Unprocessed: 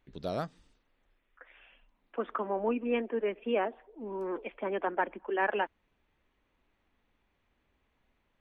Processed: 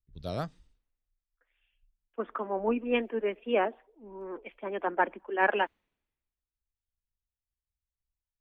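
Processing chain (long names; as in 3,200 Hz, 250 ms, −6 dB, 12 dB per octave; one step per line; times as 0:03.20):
tape wow and flutter 28 cents
multiband upward and downward expander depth 100%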